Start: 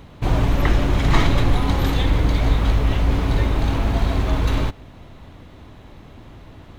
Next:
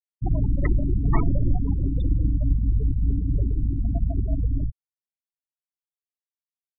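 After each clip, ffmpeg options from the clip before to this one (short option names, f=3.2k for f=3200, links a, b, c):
-af "afftfilt=real='re*gte(hypot(re,im),0.282)':imag='im*gte(hypot(re,im),0.282)':win_size=1024:overlap=0.75,volume=-3.5dB"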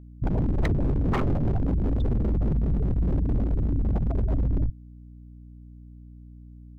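-af "aeval=exprs='0.106*(abs(mod(val(0)/0.106+3,4)-2)-1)':c=same,aeval=exprs='val(0)+0.00562*(sin(2*PI*60*n/s)+sin(2*PI*2*60*n/s)/2+sin(2*PI*3*60*n/s)/3+sin(2*PI*4*60*n/s)/4+sin(2*PI*5*60*n/s)/5)':c=same,volume=1.5dB"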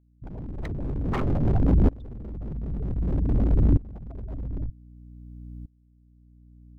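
-af "aeval=exprs='val(0)*pow(10,-25*if(lt(mod(-0.53*n/s,1),2*abs(-0.53)/1000),1-mod(-0.53*n/s,1)/(2*abs(-0.53)/1000),(mod(-0.53*n/s,1)-2*abs(-0.53)/1000)/(1-2*abs(-0.53)/1000))/20)':c=same,volume=7.5dB"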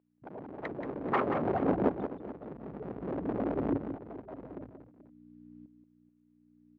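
-filter_complex "[0:a]highpass=430,lowpass=2k,asplit=2[a][b];[b]aecho=0:1:180|433:0.398|0.158[c];[a][c]amix=inputs=2:normalize=0,volume=4.5dB"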